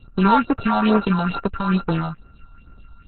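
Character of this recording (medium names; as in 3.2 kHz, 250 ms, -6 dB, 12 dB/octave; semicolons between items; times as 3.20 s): a buzz of ramps at a fixed pitch in blocks of 32 samples; phasing stages 4, 2.3 Hz, lowest notch 350–3700 Hz; Opus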